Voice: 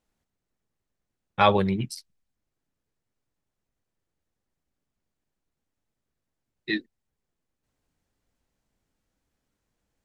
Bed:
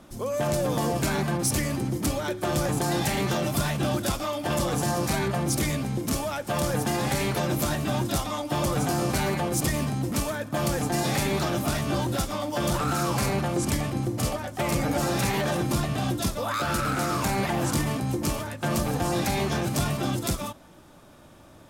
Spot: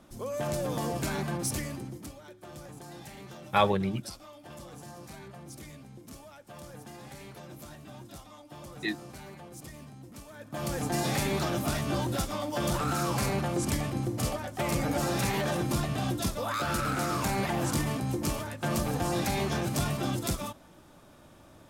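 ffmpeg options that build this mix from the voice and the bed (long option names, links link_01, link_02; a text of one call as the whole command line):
ffmpeg -i stem1.wav -i stem2.wav -filter_complex "[0:a]adelay=2150,volume=-4.5dB[link_01];[1:a]volume=10.5dB,afade=type=out:start_time=1.44:duration=0.7:silence=0.199526,afade=type=in:start_time=10.29:duration=0.64:silence=0.149624[link_02];[link_01][link_02]amix=inputs=2:normalize=0" out.wav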